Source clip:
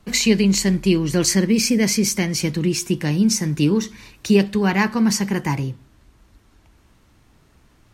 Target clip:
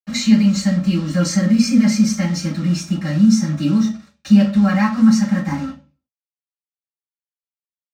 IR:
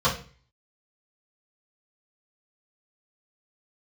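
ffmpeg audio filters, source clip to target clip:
-filter_complex "[0:a]aecho=1:1:3.8:0.97,acrusher=bits=4:mix=0:aa=0.5[s0];[1:a]atrim=start_sample=2205,asetrate=52920,aresample=44100[s1];[s0][s1]afir=irnorm=-1:irlink=0,volume=0.133"

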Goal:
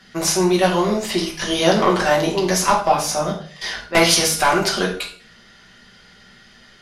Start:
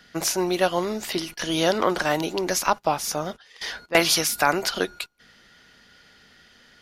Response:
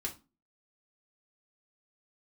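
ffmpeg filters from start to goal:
-filter_complex "[0:a]volume=3.35,asoftclip=hard,volume=0.299[s0];[1:a]atrim=start_sample=2205,asetrate=23373,aresample=44100[s1];[s0][s1]afir=irnorm=-1:irlink=0,volume=1.12"

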